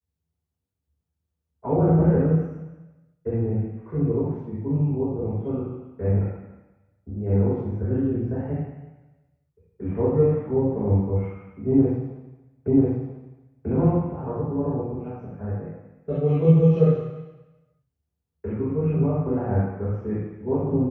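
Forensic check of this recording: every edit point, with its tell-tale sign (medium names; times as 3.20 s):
12.68 s: repeat of the last 0.99 s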